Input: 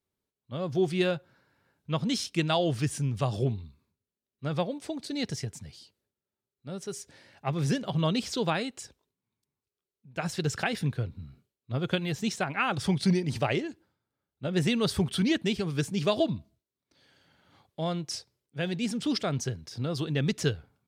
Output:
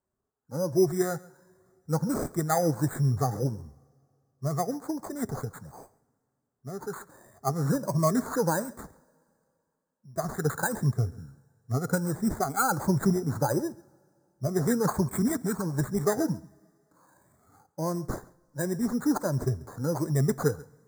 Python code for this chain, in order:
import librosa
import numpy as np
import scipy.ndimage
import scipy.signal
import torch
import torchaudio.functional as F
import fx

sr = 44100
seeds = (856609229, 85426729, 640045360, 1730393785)

y = fx.spec_ripple(x, sr, per_octave=1.3, drift_hz=1.4, depth_db=17)
y = fx.graphic_eq_15(y, sr, hz=(100, 2500, 10000), db=(5, -7, 6), at=(12.84, 14.51))
y = np.repeat(y[::8], 8)[:len(y)]
y = scipy.signal.sosfilt(scipy.signal.cheby1(2, 1.0, [1300.0, 6000.0], 'bandstop', fs=sr, output='sos'), y)
y = y + 10.0 ** (-22.0 / 20.0) * np.pad(y, (int(136 * sr / 1000.0), 0))[:len(y)]
y = fx.rev_double_slope(y, sr, seeds[0], early_s=0.25, late_s=2.5, knee_db=-17, drr_db=19.5)